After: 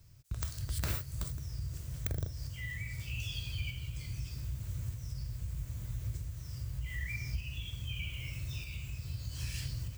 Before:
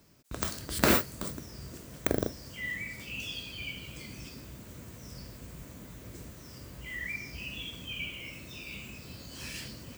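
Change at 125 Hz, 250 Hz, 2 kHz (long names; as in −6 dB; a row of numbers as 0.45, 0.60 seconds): +6.5, −12.5, −8.0 decibels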